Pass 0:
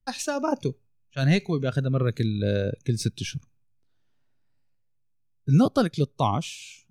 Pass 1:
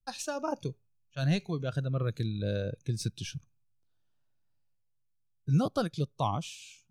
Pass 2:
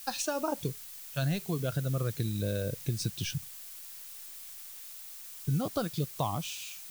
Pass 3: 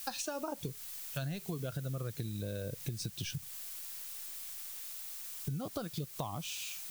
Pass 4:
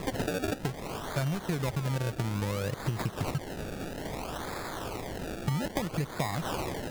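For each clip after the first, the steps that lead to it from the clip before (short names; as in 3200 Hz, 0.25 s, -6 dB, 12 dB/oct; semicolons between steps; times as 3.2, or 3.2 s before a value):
thirty-one-band EQ 250 Hz -7 dB, 400 Hz -5 dB, 2000 Hz -8 dB; gain -6 dB
compressor 4:1, threshold -35 dBFS, peak gain reduction 12 dB; added noise blue -52 dBFS; gain +6 dB
compressor, threshold -37 dBFS, peak gain reduction 11 dB; gain +1.5 dB
decimation with a swept rate 29×, swing 100% 0.6 Hz; gain +7.5 dB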